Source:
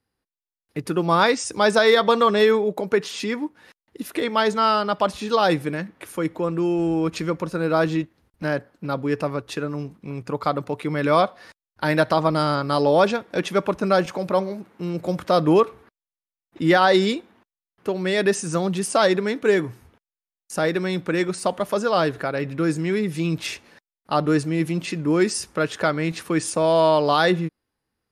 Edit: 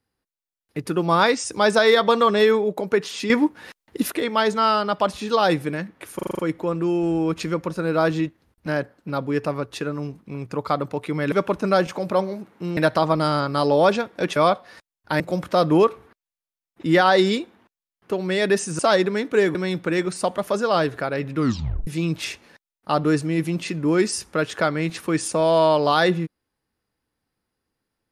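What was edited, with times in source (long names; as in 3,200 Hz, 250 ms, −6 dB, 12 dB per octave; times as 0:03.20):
0:03.30–0:04.12: clip gain +9 dB
0:06.15: stutter 0.04 s, 7 plays
0:11.08–0:11.92: swap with 0:13.51–0:14.96
0:18.55–0:18.90: remove
0:19.66–0:20.77: remove
0:22.59: tape stop 0.50 s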